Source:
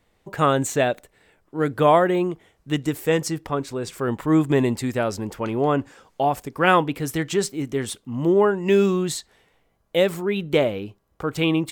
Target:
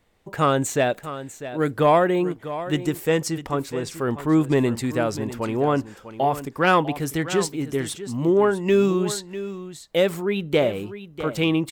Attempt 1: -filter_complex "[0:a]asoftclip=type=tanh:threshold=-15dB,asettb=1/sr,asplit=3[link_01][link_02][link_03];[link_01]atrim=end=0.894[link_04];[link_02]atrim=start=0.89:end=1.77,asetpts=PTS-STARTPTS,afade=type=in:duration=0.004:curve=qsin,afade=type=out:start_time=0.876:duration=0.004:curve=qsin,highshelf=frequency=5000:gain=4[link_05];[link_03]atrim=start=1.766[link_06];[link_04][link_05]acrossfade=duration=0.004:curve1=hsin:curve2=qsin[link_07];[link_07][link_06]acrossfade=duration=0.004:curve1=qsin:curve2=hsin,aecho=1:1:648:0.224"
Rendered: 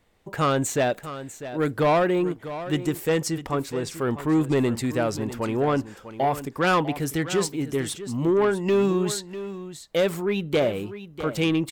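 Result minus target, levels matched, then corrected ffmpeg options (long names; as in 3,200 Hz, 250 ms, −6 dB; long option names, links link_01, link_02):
soft clipping: distortion +12 dB
-filter_complex "[0:a]asoftclip=type=tanh:threshold=-6dB,asettb=1/sr,asplit=3[link_01][link_02][link_03];[link_01]atrim=end=0.894[link_04];[link_02]atrim=start=0.89:end=1.77,asetpts=PTS-STARTPTS,afade=type=in:duration=0.004:curve=qsin,afade=type=out:start_time=0.876:duration=0.004:curve=qsin,highshelf=frequency=5000:gain=4[link_05];[link_03]atrim=start=1.766[link_06];[link_04][link_05]acrossfade=duration=0.004:curve1=hsin:curve2=qsin[link_07];[link_07][link_06]acrossfade=duration=0.004:curve1=qsin:curve2=hsin,aecho=1:1:648:0.224"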